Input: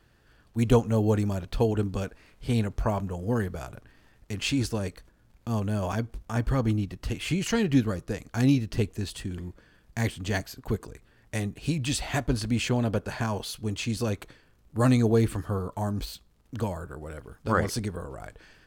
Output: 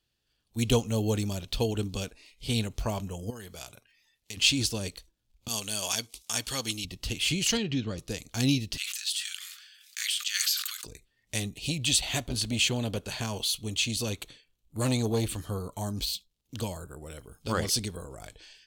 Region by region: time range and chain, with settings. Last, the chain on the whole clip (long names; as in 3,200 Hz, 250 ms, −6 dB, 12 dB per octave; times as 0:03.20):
0:03.30–0:04.37: low-shelf EQ 470 Hz −8.5 dB + downward compressor 5 to 1, threshold −35 dBFS
0:05.48–0:06.85: low-pass filter 11,000 Hz + spectral tilt +4 dB per octave
0:07.57–0:07.98: high-pass filter 59 Hz + downward compressor 2 to 1, threshold −23 dBFS + high-frequency loss of the air 130 metres
0:08.77–0:10.84: Butterworth high-pass 1,200 Hz 96 dB per octave + level that may fall only so fast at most 33 dB per second
0:11.67–0:15.46: parametric band 5,100 Hz −5.5 dB 0.22 octaves + saturating transformer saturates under 380 Hz
whole clip: noise reduction from a noise print of the clip's start 16 dB; high shelf with overshoot 2,300 Hz +11 dB, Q 1.5; level −4 dB